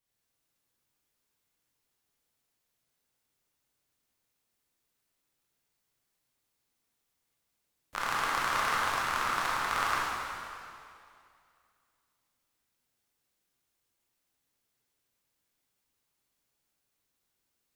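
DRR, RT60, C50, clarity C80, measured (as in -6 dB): -6.5 dB, 2.4 s, -3.5 dB, -1.5 dB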